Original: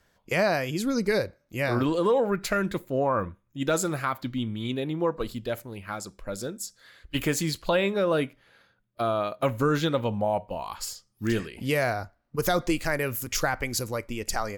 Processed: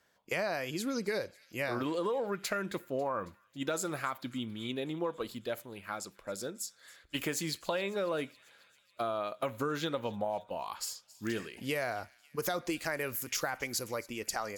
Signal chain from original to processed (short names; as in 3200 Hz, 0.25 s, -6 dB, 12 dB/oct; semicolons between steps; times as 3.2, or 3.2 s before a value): HPF 300 Hz 6 dB/oct; compressor, threshold -26 dBFS, peak gain reduction 6.5 dB; thin delay 0.273 s, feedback 66%, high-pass 2400 Hz, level -20 dB; gain -3.5 dB